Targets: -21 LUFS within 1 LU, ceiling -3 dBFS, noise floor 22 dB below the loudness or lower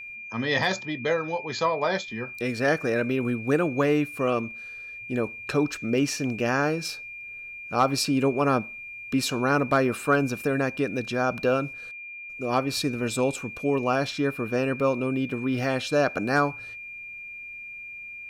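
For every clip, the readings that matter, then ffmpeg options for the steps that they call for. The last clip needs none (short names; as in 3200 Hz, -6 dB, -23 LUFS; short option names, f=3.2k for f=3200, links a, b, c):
steady tone 2400 Hz; tone level -37 dBFS; loudness -26.0 LUFS; peak -10.5 dBFS; loudness target -21.0 LUFS
-> -af "bandreject=f=2.4k:w=30"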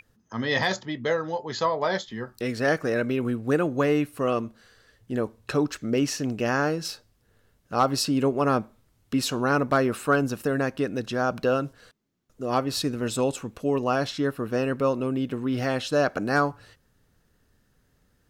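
steady tone none; loudness -26.0 LUFS; peak -10.5 dBFS; loudness target -21.0 LUFS
-> -af "volume=5dB"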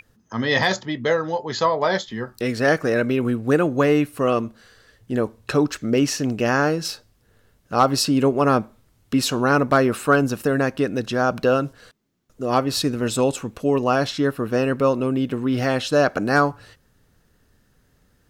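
loudness -21.0 LUFS; peak -5.5 dBFS; noise floor -62 dBFS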